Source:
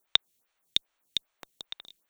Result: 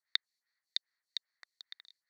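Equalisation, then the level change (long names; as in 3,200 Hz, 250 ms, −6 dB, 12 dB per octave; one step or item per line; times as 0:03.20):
pair of resonant band-passes 2,900 Hz, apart 1.2 octaves
+2.5 dB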